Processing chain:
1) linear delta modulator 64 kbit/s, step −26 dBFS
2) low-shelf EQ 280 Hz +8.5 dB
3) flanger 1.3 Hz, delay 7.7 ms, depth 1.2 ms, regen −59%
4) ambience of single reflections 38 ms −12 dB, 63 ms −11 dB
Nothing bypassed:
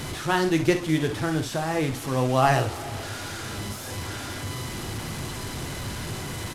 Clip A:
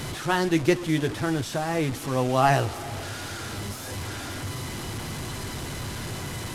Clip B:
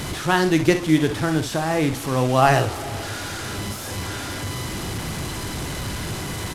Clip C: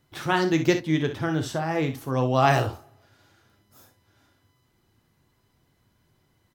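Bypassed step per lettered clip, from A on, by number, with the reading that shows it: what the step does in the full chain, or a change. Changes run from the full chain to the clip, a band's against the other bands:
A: 4, echo-to-direct ratio −8.5 dB to none audible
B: 3, change in integrated loudness +4.0 LU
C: 1, 8 kHz band −8.0 dB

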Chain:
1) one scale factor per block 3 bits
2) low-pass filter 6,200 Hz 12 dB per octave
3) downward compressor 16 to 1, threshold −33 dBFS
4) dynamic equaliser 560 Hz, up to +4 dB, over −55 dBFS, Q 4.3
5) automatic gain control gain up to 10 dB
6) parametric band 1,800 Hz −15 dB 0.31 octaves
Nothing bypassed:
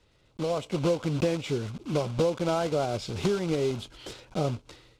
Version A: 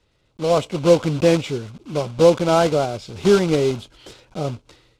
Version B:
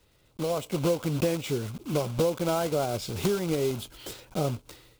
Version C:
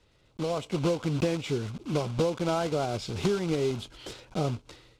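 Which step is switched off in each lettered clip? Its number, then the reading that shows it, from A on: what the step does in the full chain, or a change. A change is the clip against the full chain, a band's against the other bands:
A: 3, average gain reduction 6.5 dB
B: 2, 8 kHz band +5.0 dB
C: 4, 500 Hz band −1.5 dB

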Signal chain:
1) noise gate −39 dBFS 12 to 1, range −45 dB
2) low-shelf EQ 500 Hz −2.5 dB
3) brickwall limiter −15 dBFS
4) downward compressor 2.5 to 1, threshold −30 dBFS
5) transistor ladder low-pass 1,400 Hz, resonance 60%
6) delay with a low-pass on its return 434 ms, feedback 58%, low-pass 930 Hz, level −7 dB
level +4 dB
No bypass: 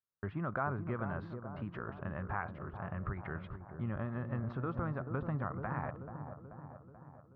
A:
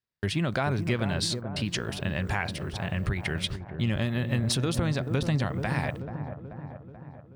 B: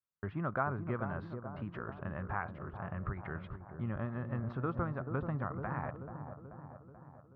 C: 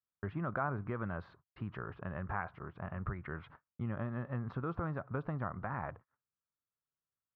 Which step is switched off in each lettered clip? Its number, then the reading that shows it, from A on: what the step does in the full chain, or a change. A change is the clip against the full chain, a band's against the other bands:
5, 1 kHz band −6.0 dB
3, change in crest factor +2.5 dB
6, echo-to-direct ratio −11.0 dB to none audible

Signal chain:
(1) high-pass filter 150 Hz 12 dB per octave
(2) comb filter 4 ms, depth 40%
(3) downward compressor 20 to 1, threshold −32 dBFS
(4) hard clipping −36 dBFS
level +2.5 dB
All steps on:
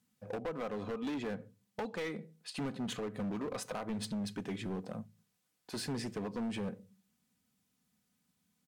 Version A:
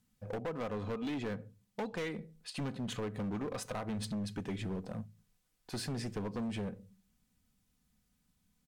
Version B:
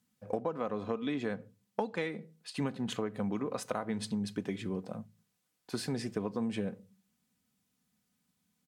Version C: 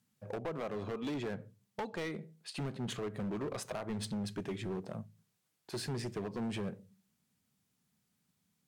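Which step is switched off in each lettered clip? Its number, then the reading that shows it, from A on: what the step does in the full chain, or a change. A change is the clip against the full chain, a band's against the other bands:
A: 1, 125 Hz band +4.0 dB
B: 4, distortion level −8 dB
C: 2, 125 Hz band +3.0 dB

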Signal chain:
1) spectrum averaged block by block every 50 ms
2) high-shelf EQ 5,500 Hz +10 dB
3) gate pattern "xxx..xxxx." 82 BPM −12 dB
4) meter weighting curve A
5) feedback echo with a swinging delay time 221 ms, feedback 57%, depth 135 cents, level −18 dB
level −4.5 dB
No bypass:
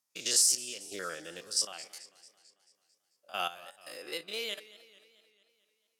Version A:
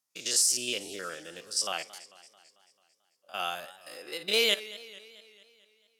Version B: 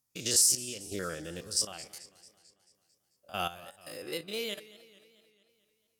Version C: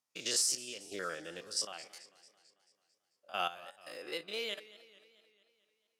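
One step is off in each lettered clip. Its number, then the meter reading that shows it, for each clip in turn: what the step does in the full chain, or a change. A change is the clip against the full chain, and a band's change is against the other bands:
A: 3, change in crest factor −3.0 dB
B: 4, 125 Hz band +14.0 dB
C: 2, 8 kHz band −6.5 dB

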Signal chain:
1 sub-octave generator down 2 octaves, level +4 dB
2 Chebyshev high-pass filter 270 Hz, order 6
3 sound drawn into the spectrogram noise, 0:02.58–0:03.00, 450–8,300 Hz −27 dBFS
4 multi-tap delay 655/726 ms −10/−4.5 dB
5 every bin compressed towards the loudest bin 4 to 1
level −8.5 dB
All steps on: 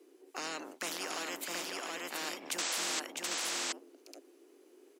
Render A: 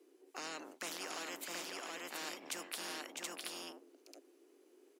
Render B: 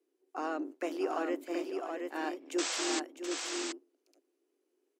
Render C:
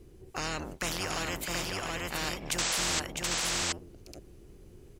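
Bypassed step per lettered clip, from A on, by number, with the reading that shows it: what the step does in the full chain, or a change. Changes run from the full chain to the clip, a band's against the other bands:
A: 3, change in crest factor +4.5 dB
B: 5, 250 Hz band +13.0 dB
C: 2, 125 Hz band +18.0 dB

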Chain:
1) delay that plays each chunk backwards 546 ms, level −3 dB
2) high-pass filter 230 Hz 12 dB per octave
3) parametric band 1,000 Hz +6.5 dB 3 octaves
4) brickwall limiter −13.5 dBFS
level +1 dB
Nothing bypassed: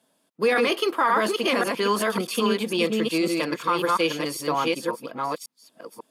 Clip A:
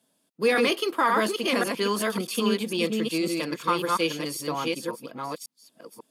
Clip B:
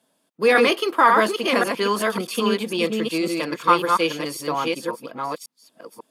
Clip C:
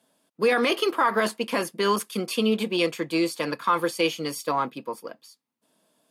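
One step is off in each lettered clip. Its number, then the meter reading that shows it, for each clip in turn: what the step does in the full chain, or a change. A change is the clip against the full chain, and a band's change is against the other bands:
3, 1 kHz band −1.5 dB
4, change in crest factor +6.5 dB
1, change in crest factor +1.5 dB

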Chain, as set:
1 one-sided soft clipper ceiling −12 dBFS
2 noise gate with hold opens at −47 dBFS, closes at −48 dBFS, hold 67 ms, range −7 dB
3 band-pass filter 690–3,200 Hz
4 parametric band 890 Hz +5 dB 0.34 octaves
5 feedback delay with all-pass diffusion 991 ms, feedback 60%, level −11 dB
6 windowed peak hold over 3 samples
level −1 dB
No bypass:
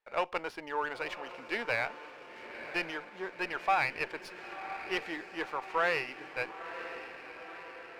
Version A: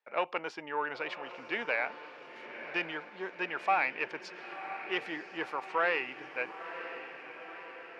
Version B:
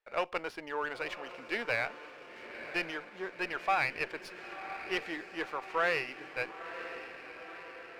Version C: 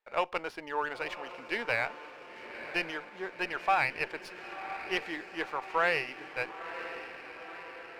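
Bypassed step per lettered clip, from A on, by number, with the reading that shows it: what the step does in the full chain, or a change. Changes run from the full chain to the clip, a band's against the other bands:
6, distortion level −17 dB
4, 1 kHz band −2.0 dB
1, change in integrated loudness +1.5 LU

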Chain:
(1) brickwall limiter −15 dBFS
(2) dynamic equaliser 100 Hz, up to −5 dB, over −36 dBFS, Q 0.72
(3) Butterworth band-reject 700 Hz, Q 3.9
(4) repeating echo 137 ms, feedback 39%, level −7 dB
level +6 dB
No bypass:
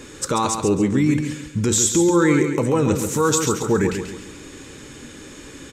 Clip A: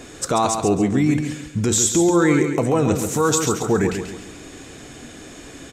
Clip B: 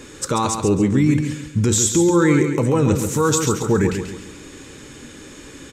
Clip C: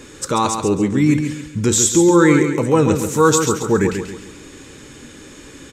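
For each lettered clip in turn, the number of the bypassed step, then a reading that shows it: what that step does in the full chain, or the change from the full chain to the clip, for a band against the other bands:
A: 3, 1 kHz band +1.5 dB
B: 2, change in momentary loudness spread −14 LU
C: 1, change in momentary loudness spread −12 LU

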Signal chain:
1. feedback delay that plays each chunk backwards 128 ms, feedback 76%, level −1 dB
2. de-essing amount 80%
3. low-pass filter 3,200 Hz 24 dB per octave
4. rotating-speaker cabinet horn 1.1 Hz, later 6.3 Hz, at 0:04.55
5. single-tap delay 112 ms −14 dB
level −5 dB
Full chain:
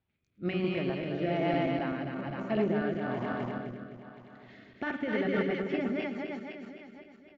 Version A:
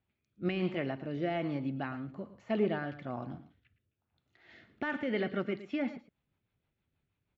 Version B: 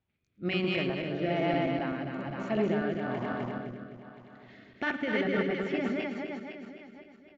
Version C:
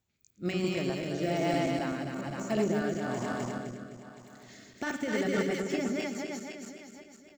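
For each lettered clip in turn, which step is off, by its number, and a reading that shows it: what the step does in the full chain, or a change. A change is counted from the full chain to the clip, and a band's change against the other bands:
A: 1, change in momentary loudness spread −8 LU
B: 2, 4 kHz band +4.5 dB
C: 3, 4 kHz band +3.5 dB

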